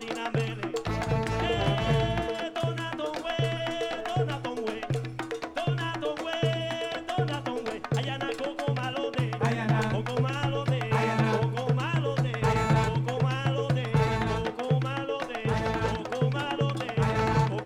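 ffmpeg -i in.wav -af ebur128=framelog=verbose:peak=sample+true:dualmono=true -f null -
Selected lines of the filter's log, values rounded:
Integrated loudness:
  I:         -25.6 LUFS
  Threshold: -35.6 LUFS
Loudness range:
  LRA:         4.1 LU
  Threshold: -45.7 LUFS
  LRA low:   -27.8 LUFS
  LRA high:  -23.7 LUFS
Sample peak:
  Peak:      -10.4 dBFS
True peak:
  Peak:      -10.4 dBFS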